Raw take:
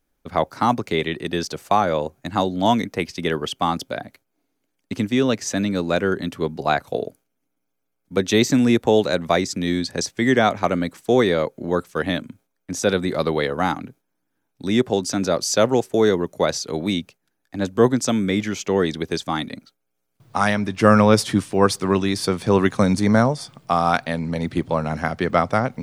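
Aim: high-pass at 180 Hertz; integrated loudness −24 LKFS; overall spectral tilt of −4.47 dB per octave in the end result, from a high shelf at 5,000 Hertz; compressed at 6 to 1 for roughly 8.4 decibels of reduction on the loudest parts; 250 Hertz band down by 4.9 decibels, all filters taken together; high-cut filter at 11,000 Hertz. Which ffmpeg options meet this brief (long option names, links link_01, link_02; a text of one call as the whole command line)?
ffmpeg -i in.wav -af "highpass=180,lowpass=11000,equalizer=frequency=250:width_type=o:gain=-4.5,highshelf=frequency=5000:gain=-8,acompressor=threshold=-21dB:ratio=6,volume=4dB" out.wav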